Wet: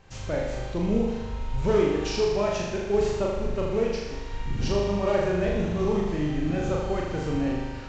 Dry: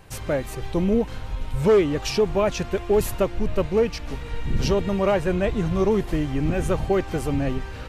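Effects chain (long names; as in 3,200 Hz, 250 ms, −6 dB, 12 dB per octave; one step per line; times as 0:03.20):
variable-slope delta modulation 64 kbit/s
flutter between parallel walls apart 6.8 metres, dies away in 1.1 s
downsampling to 16,000 Hz
level −7 dB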